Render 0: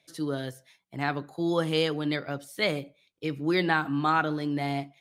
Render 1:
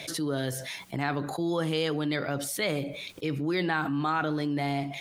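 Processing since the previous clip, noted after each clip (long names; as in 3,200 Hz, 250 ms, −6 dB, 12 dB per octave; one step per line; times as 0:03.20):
envelope flattener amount 70%
level −4.5 dB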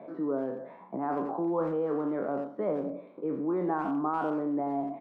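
peak hold with a decay on every bin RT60 0.54 s
Chebyshev band-pass filter 200–1,100 Hz, order 3
far-end echo of a speakerphone 90 ms, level −12 dB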